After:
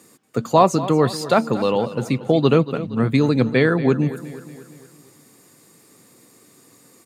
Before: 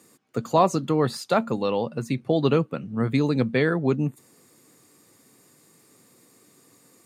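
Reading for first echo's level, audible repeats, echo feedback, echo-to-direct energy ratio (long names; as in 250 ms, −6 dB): −15.0 dB, 4, 53%, −13.5 dB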